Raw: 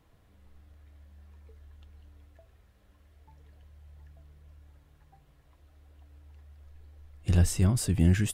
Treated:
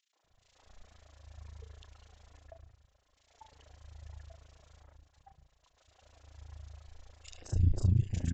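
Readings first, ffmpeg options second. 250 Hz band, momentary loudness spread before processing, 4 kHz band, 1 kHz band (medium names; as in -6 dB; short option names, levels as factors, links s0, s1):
-12.0 dB, 4 LU, -12.0 dB, -8.0 dB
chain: -filter_complex "[0:a]aemphasis=mode=production:type=75kf,bandreject=f=48.29:t=h:w=4,bandreject=f=96.58:t=h:w=4,bandreject=f=144.87:t=h:w=4,bandreject=f=193.16:t=h:w=4,bandreject=f=241.45:t=h:w=4,bandreject=f=289.74:t=h:w=4,bandreject=f=338.03:t=h:w=4,bandreject=f=386.32:t=h:w=4,bandreject=f=434.61:t=h:w=4,bandreject=f=482.9:t=h:w=4,bandreject=f=531.19:t=h:w=4,bandreject=f=579.48:t=h:w=4,bandreject=f=627.77:t=h:w=4,bandreject=f=676.06:t=h:w=4,bandreject=f=724.35:t=h:w=4,bandreject=f=772.64:t=h:w=4,bandreject=f=820.93:t=h:w=4,bandreject=f=869.22:t=h:w=4,bandreject=f=917.51:t=h:w=4,bandreject=f=965.8:t=h:w=4,bandreject=f=1014.09:t=h:w=4,bandreject=f=1062.38:t=h:w=4,bandreject=f=1110.67:t=h:w=4,bandreject=f=1158.96:t=h:w=4,bandreject=f=1207.25:t=h:w=4,bandreject=f=1255.54:t=h:w=4,bandreject=f=1303.83:t=h:w=4,bandreject=f=1352.12:t=h:w=4,bandreject=f=1400.41:t=h:w=4,bandreject=f=1448.7:t=h:w=4,bandreject=f=1496.99:t=h:w=4,bandreject=f=1545.28:t=h:w=4,bandreject=f=1593.57:t=h:w=4,bandreject=f=1641.86:t=h:w=4,bandreject=f=1690.15:t=h:w=4,bandreject=f=1738.44:t=h:w=4,bandreject=f=1786.73:t=h:w=4,bandreject=f=1835.02:t=h:w=4,bandreject=f=1883.31:t=h:w=4,agate=range=0.251:threshold=0.00158:ratio=16:detection=peak,firequalizer=gain_entry='entry(180,0);entry(620,12);entry(1700,8)':delay=0.05:min_phase=1,acrossover=split=190[s0][s1];[s0]aphaser=in_gain=1:out_gain=1:delay=4.6:decay=0.61:speed=0.79:type=sinusoidal[s2];[s1]acompressor=threshold=0.00501:ratio=4[s3];[s2][s3]amix=inputs=2:normalize=0,tremolo=f=28:d=0.889,asoftclip=type=tanh:threshold=0.112,acrossover=split=340|2100[s4][s5][s6];[s5]adelay=130[s7];[s4]adelay=240[s8];[s8][s7][s6]amix=inputs=3:normalize=0,aresample=16000,aresample=44100"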